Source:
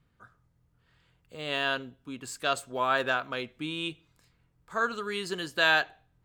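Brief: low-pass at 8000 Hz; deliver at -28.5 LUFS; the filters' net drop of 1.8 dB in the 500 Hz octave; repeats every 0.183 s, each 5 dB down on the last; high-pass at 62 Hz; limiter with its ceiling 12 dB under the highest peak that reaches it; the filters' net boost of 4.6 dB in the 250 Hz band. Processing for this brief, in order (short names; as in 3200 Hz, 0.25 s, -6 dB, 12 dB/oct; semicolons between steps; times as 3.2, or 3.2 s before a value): HPF 62 Hz; LPF 8000 Hz; bell 250 Hz +7.5 dB; bell 500 Hz -4.5 dB; limiter -22 dBFS; feedback echo 0.183 s, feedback 56%, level -5 dB; gain +4.5 dB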